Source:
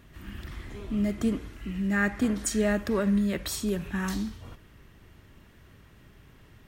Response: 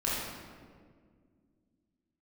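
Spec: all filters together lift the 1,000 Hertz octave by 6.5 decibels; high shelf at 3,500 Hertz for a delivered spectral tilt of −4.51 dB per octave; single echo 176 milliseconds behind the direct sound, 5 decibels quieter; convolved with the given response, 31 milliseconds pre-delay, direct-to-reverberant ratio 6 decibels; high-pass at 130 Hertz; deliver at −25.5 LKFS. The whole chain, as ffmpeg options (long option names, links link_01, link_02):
-filter_complex "[0:a]highpass=130,equalizer=frequency=1000:width_type=o:gain=7.5,highshelf=frequency=3500:gain=8,aecho=1:1:176:0.562,asplit=2[link_01][link_02];[1:a]atrim=start_sample=2205,adelay=31[link_03];[link_02][link_03]afir=irnorm=-1:irlink=0,volume=-14.5dB[link_04];[link_01][link_04]amix=inputs=2:normalize=0,volume=-0.5dB"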